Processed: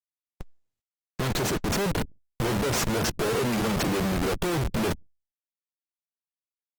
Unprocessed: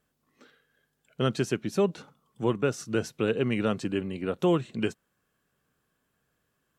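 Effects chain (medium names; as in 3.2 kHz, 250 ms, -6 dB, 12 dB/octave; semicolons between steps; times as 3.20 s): Schmitt trigger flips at -41 dBFS; spectral noise reduction 20 dB; trim +5.5 dB; Opus 16 kbps 48 kHz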